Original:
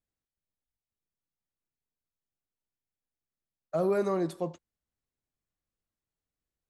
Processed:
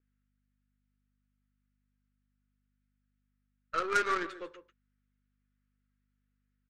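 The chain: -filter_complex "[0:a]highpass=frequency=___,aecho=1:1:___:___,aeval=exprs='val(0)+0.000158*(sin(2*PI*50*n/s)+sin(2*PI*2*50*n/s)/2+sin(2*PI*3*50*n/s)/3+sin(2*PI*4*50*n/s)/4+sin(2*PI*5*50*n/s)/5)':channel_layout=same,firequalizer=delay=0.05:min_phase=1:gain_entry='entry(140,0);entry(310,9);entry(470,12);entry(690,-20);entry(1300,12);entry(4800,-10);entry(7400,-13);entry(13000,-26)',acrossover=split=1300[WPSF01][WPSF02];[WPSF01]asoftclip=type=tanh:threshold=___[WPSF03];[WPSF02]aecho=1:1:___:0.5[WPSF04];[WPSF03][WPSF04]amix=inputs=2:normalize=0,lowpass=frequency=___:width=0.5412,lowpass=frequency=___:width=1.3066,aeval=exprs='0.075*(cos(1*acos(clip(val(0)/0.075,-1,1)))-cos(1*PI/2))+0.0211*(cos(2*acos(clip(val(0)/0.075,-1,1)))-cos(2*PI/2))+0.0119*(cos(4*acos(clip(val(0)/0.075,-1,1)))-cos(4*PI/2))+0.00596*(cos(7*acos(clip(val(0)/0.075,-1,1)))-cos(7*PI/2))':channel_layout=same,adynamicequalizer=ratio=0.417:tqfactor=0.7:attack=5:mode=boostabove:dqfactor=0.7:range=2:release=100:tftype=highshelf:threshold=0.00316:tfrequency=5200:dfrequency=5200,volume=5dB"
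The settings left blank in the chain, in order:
920, 146, 0.224, -36dB, 6.9, 7700, 7700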